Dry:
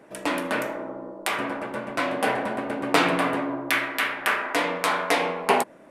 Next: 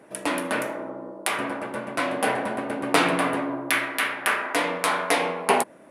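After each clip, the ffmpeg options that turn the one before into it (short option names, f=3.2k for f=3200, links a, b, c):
-af "highpass=44,equalizer=f=10k:w=4.9:g=10.5"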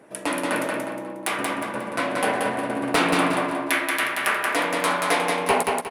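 -filter_complex "[0:a]volume=11.5dB,asoftclip=hard,volume=-11.5dB,asplit=2[a][b];[b]aecho=0:1:180|360|540|720|900:0.668|0.241|0.0866|0.0312|0.0112[c];[a][c]amix=inputs=2:normalize=0"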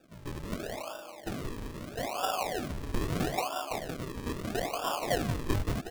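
-filter_complex "[0:a]asplit=3[a][b][c];[a]bandpass=f=730:t=q:w=8,volume=0dB[d];[b]bandpass=f=1.09k:t=q:w=8,volume=-6dB[e];[c]bandpass=f=2.44k:t=q:w=8,volume=-9dB[f];[d][e][f]amix=inputs=3:normalize=0,acrusher=samples=42:mix=1:aa=0.000001:lfo=1:lforange=42:lforate=0.77"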